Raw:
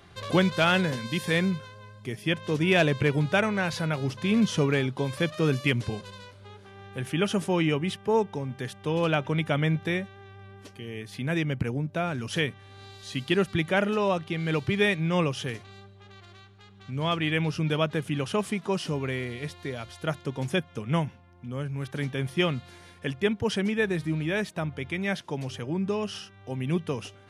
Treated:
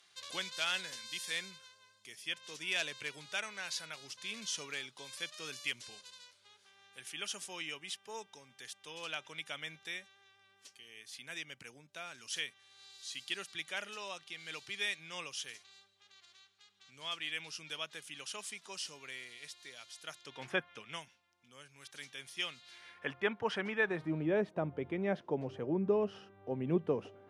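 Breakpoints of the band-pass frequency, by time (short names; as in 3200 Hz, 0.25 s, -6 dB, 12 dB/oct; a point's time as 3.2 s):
band-pass, Q 1
20.18 s 6700 Hz
20.56 s 1200 Hz
21 s 6500 Hz
22.57 s 6500 Hz
23.06 s 1200 Hz
23.83 s 1200 Hz
24.23 s 460 Hz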